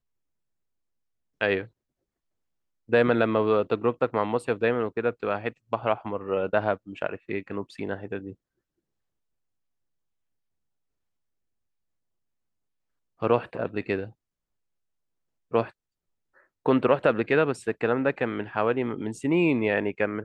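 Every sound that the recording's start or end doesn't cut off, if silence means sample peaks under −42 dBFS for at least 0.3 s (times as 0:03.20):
0:01.41–0:01.66
0:02.89–0:08.33
0:13.22–0:14.10
0:15.52–0:15.70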